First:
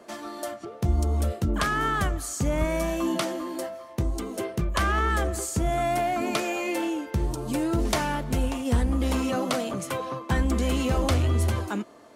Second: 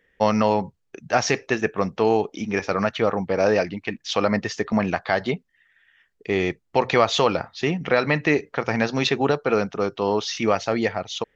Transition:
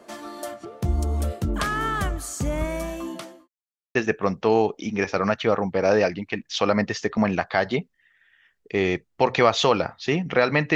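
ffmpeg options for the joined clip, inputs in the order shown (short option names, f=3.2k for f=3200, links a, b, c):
-filter_complex "[0:a]apad=whole_dur=10.75,atrim=end=10.75,asplit=2[a][b];[a]atrim=end=3.48,asetpts=PTS-STARTPTS,afade=t=out:st=2.21:d=1.27:c=qsin[c];[b]atrim=start=3.48:end=3.95,asetpts=PTS-STARTPTS,volume=0[d];[1:a]atrim=start=1.5:end=8.3,asetpts=PTS-STARTPTS,afade=t=in:d=0.004:c=hsin[e];[c][d][e]concat=n=3:v=0:a=1"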